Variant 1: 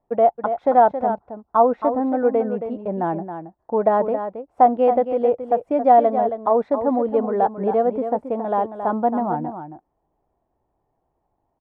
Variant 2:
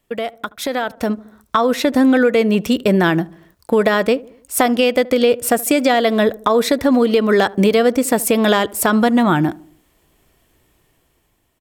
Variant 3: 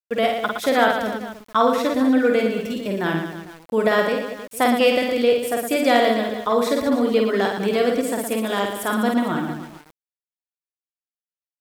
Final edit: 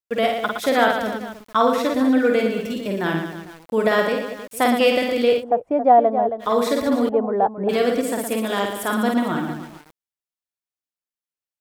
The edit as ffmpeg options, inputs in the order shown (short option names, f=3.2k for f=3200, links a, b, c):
-filter_complex "[0:a]asplit=2[a][b];[2:a]asplit=3[c][d][e];[c]atrim=end=5.44[f];[a]atrim=start=5.38:end=6.45[g];[d]atrim=start=6.39:end=7.092[h];[b]atrim=start=7.088:end=7.692[i];[e]atrim=start=7.688[j];[f][g]acrossfade=d=0.06:c1=tri:c2=tri[k];[k][h]acrossfade=d=0.06:c1=tri:c2=tri[l];[l][i]acrossfade=d=0.004:c1=hsin:c2=hsin[m];[m][j]acrossfade=d=0.004:c1=hsin:c2=hsin"